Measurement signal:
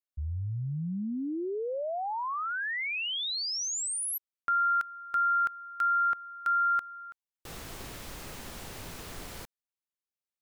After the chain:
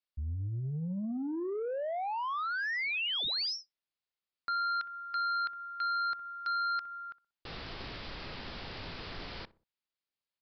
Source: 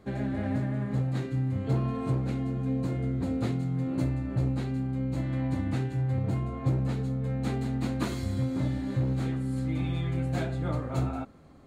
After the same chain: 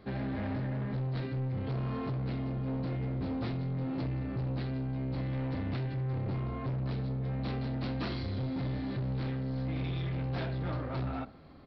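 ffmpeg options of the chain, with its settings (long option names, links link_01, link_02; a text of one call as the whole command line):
ffmpeg -i in.wav -filter_complex "[0:a]highshelf=frequency=2000:gain=5,asplit=2[link_01][link_02];[link_02]adelay=62,lowpass=frequency=1100:poles=1,volume=-18dB,asplit=2[link_03][link_04];[link_04]adelay=62,lowpass=frequency=1100:poles=1,volume=0.41,asplit=2[link_05][link_06];[link_06]adelay=62,lowpass=frequency=1100:poles=1,volume=0.41[link_07];[link_01][link_03][link_05][link_07]amix=inputs=4:normalize=0,aresample=11025,asoftclip=type=tanh:threshold=-30.5dB,aresample=44100" out.wav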